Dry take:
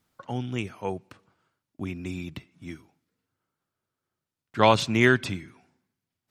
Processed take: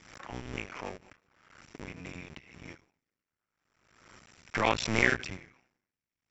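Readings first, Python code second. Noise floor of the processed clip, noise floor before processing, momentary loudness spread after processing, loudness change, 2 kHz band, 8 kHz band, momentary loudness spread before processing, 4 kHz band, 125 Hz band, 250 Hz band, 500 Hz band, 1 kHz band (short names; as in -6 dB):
under -85 dBFS, under -85 dBFS, 23 LU, -6.0 dB, -3.0 dB, -2.5 dB, 21 LU, -6.5 dB, -10.0 dB, -10.0 dB, -9.5 dB, -8.0 dB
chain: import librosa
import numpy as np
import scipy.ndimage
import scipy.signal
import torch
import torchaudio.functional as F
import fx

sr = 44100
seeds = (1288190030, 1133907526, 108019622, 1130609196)

y = fx.cycle_switch(x, sr, every=2, mode='muted')
y = scipy.signal.sosfilt(scipy.signal.cheby1(6, 9, 7600.0, 'lowpass', fs=sr, output='sos'), y)
y = fx.pre_swell(y, sr, db_per_s=55.0)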